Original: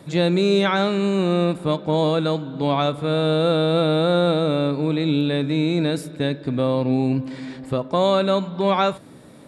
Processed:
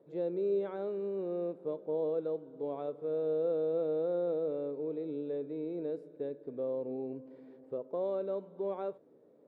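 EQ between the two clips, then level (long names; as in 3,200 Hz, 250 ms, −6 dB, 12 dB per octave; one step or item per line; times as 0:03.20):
resonant band-pass 450 Hz, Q 4
−8.0 dB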